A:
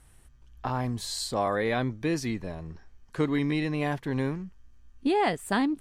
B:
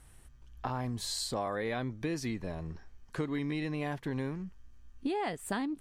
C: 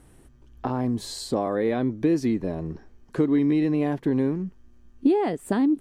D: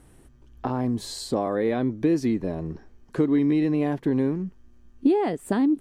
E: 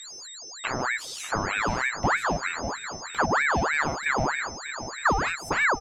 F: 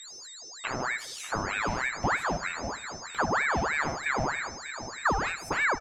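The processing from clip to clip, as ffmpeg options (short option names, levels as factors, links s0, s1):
-af "acompressor=threshold=0.0224:ratio=3"
-af "equalizer=f=310:w=0.58:g=14.5"
-af anull
-filter_complex "[0:a]asplit=2[s0][s1];[s1]adelay=594,lowpass=f=3500:p=1,volume=0.266,asplit=2[s2][s3];[s3]adelay=594,lowpass=f=3500:p=1,volume=0.49,asplit=2[s4][s5];[s5]adelay=594,lowpass=f=3500:p=1,volume=0.49,asplit=2[s6][s7];[s7]adelay=594,lowpass=f=3500:p=1,volume=0.49,asplit=2[s8][s9];[s9]adelay=594,lowpass=f=3500:p=1,volume=0.49[s10];[s0][s2][s4][s6][s8][s10]amix=inputs=6:normalize=0,aeval=exprs='val(0)+0.0158*sin(2*PI*5700*n/s)':c=same,aeval=exprs='val(0)*sin(2*PI*1200*n/s+1200*0.7/3.2*sin(2*PI*3.2*n/s))':c=same"
-af "aecho=1:1:77|154|231:0.15|0.0539|0.0194,volume=0.668"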